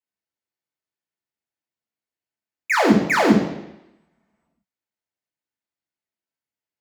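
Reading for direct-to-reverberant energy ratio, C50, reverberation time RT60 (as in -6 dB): -3.0 dB, 6.0 dB, 0.90 s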